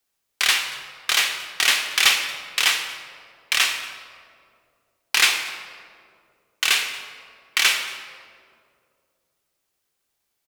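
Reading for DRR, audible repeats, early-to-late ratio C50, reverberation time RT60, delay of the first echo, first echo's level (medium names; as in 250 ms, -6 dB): 5.5 dB, 1, 7.5 dB, 2.3 s, 231 ms, -20.5 dB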